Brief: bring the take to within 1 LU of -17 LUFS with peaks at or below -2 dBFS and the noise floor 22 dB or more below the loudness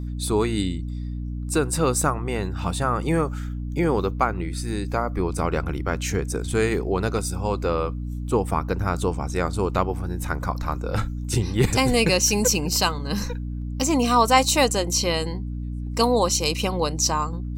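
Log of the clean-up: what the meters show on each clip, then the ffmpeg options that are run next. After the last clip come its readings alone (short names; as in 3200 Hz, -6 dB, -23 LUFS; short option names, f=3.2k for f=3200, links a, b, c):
hum 60 Hz; harmonics up to 300 Hz; hum level -27 dBFS; loudness -23.5 LUFS; peak -4.5 dBFS; loudness target -17.0 LUFS
-> -af "bandreject=f=60:t=h:w=4,bandreject=f=120:t=h:w=4,bandreject=f=180:t=h:w=4,bandreject=f=240:t=h:w=4,bandreject=f=300:t=h:w=4"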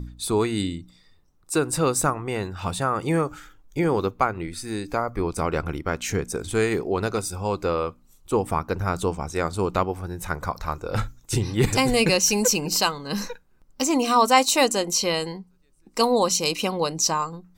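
hum none; loudness -24.0 LUFS; peak -5.0 dBFS; loudness target -17.0 LUFS
-> -af "volume=7dB,alimiter=limit=-2dB:level=0:latency=1"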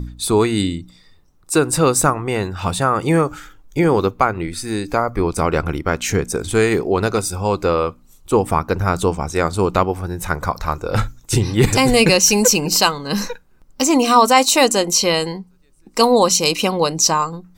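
loudness -17.0 LUFS; peak -2.0 dBFS; noise floor -51 dBFS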